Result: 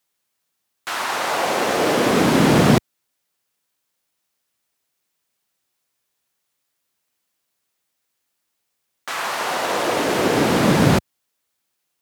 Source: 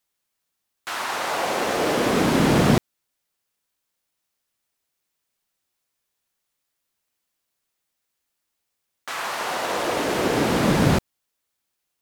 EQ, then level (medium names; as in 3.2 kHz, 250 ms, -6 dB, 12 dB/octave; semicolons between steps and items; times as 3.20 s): high-pass 81 Hz; +3.5 dB